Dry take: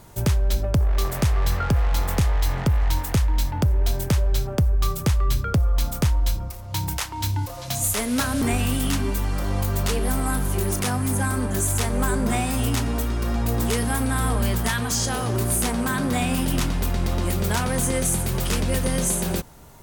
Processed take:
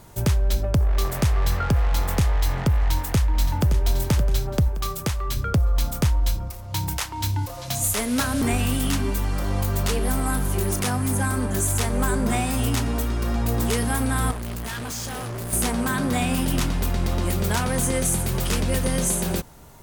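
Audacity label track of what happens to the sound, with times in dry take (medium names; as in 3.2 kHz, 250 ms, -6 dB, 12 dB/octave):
2.770000	3.660000	echo throw 570 ms, feedback 45%, level -8.5 dB
4.680000	5.370000	bass shelf 210 Hz -7.5 dB
14.310000	15.530000	hard clipper -29.5 dBFS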